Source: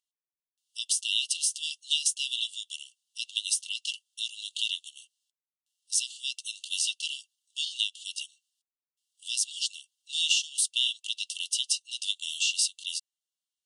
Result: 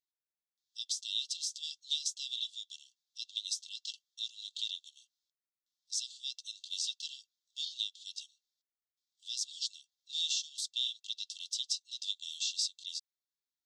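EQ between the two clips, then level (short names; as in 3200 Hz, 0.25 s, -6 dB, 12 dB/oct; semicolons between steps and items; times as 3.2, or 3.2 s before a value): dynamic EQ 7800 Hz, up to +4 dB, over -45 dBFS, Q 4.3; bell 3200 Hz +6.5 dB 0.74 oct; fixed phaser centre 2900 Hz, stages 6; -6.0 dB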